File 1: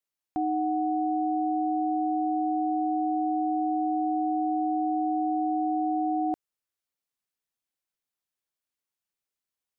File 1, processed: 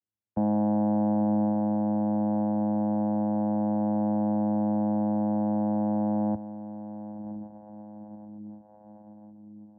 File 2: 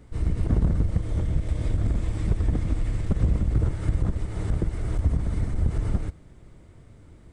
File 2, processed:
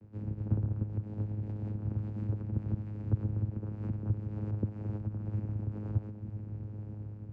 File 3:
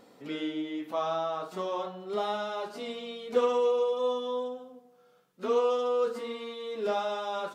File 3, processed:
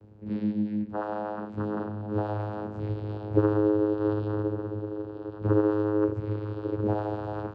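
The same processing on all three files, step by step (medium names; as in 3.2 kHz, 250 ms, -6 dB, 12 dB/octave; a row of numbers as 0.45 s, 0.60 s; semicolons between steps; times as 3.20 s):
echo that smears into a reverb 1039 ms, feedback 55%, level -10.5 dB; dynamic bell 1.1 kHz, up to +4 dB, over -46 dBFS, Q 1.5; frequency shift -84 Hz; tilt EQ -2.5 dB/octave; compression 3:1, threshold -13 dBFS; vocoder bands 8, saw 105 Hz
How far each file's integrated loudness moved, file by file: +1.0 LU, -9.0 LU, +2.0 LU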